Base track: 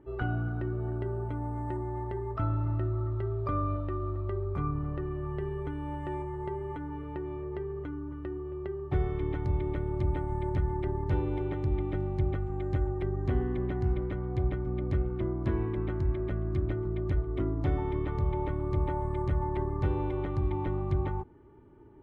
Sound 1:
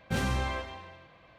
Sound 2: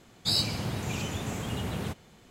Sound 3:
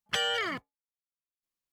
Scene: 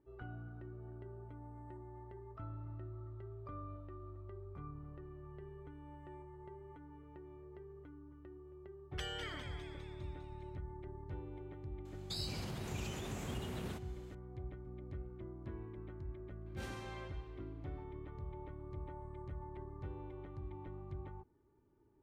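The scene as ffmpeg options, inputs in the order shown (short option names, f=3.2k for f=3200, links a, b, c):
-filter_complex "[0:a]volume=-17dB[a];[3:a]asplit=8[b][c][d][e][f][g][h][i];[c]adelay=202,afreqshift=120,volume=-8dB[j];[d]adelay=404,afreqshift=240,volume=-12.6dB[k];[e]adelay=606,afreqshift=360,volume=-17.2dB[l];[f]adelay=808,afreqshift=480,volume=-21.7dB[m];[g]adelay=1010,afreqshift=600,volume=-26.3dB[n];[h]adelay=1212,afreqshift=720,volume=-30.9dB[o];[i]adelay=1414,afreqshift=840,volume=-35.5dB[p];[b][j][k][l][m][n][o][p]amix=inputs=8:normalize=0[q];[2:a]acompressor=threshold=-32dB:ratio=6:attack=3.2:release=140:knee=1:detection=peak[r];[1:a]highpass=230[s];[q]atrim=end=1.72,asetpts=PTS-STARTPTS,volume=-15.5dB,afade=t=in:d=0.004:c=hsin,afade=t=out:st=1.716:d=0.004:c=hsin,adelay=8850[t];[r]atrim=end=2.3,asetpts=PTS-STARTPTS,volume=-7dB,afade=t=in:d=0.004:c=hsin,afade=t=out:st=2.296:d=0.004:c=hsin,adelay=11850[u];[s]atrim=end=1.38,asetpts=PTS-STARTPTS,volume=-15.5dB,afade=t=in:d=0.004:c=hsin,afade=t=out:st=1.376:d=0.004:c=hsin,adelay=16460[v];[a][t][u][v]amix=inputs=4:normalize=0"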